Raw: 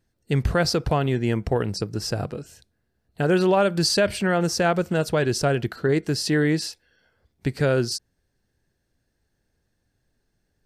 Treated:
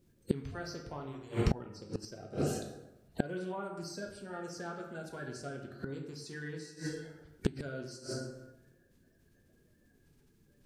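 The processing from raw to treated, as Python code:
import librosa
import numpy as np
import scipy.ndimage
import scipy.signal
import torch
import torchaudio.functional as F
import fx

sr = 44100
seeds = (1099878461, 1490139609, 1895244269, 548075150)

y = fx.spec_quant(x, sr, step_db=30)
y = fx.peak_eq(y, sr, hz=fx.line((1.11, 160.0), (1.54, 490.0)), db=-14.0, octaves=1.5, at=(1.11, 1.54), fade=0.02)
y = fx.rev_plate(y, sr, seeds[0], rt60_s=1.0, hf_ratio=0.6, predelay_ms=0, drr_db=1.0)
y = fx.gate_flip(y, sr, shuts_db=-18.0, range_db=-26)
y = fx.peak_eq(y, sr, hz=fx.line((3.51, 5300.0), (4.32, 1800.0)), db=-11.0, octaves=0.83, at=(3.51, 4.32), fade=0.02)
y = F.gain(torch.from_numpy(y), 3.5).numpy()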